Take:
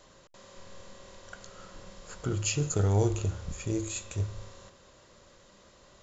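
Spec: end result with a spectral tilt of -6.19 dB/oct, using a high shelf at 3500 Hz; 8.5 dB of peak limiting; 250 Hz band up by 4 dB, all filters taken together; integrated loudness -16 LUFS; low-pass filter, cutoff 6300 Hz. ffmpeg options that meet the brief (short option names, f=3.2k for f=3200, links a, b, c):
-af "lowpass=6.3k,equalizer=f=250:t=o:g=6.5,highshelf=f=3.5k:g=-5.5,volume=16.5dB,alimiter=limit=-5dB:level=0:latency=1"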